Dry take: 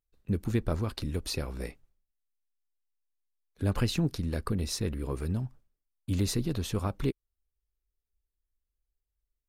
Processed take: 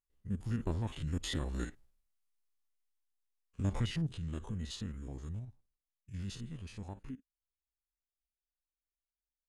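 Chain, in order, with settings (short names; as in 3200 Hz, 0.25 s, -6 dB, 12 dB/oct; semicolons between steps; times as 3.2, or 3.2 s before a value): stepped spectrum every 50 ms; Doppler pass-by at 2.16, 6 m/s, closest 4.8 m; formant shift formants -5 st; gain +2.5 dB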